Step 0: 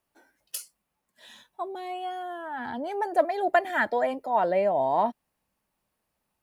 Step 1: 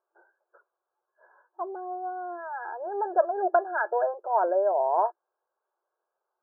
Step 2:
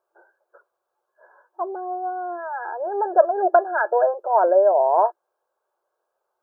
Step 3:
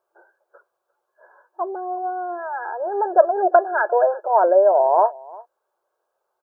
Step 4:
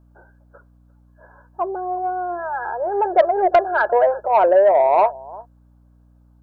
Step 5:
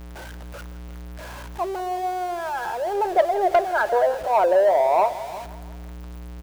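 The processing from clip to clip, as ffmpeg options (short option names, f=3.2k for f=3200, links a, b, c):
-af "afftfilt=real='re*between(b*sr/4096,340,1700)':imag='im*between(b*sr/4096,340,1700)':win_size=4096:overlap=0.75"
-af "equalizer=f=560:t=o:w=0.55:g=4,volume=5dB"
-filter_complex "[0:a]asplit=2[a][b];[b]adelay=349.9,volume=-22dB,highshelf=f=4k:g=-7.87[c];[a][c]amix=inputs=2:normalize=0,volume=1.5dB"
-af "aeval=exprs='val(0)+0.002*(sin(2*PI*60*n/s)+sin(2*PI*2*60*n/s)/2+sin(2*PI*3*60*n/s)/3+sin(2*PI*4*60*n/s)/4+sin(2*PI*5*60*n/s)/5)':c=same,acontrast=71,volume=-4dB"
-af "aeval=exprs='val(0)+0.5*0.0376*sgn(val(0))':c=same,aecho=1:1:167|334|501|668|835:0.141|0.0763|0.0412|0.0222|0.012,volume=-4.5dB"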